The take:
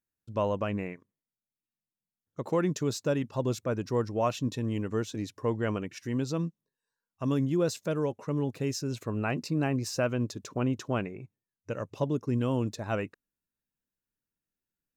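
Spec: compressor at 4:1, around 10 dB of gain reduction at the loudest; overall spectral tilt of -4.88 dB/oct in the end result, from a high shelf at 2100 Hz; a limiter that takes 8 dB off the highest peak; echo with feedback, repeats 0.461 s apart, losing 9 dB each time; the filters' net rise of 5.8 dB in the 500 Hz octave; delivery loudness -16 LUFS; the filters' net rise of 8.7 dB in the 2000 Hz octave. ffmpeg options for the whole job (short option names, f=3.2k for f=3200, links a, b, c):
-af "equalizer=f=500:t=o:g=6,equalizer=f=2k:t=o:g=8,highshelf=f=2.1k:g=6,acompressor=threshold=-30dB:ratio=4,alimiter=level_in=2dB:limit=-24dB:level=0:latency=1,volume=-2dB,aecho=1:1:461|922|1383|1844:0.355|0.124|0.0435|0.0152,volume=20.5dB"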